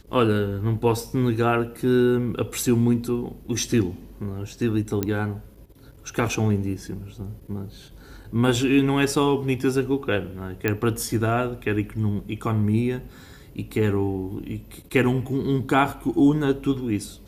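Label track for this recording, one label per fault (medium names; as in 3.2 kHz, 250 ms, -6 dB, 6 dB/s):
5.030000	5.030000	pop -10 dBFS
10.680000	10.680000	pop -9 dBFS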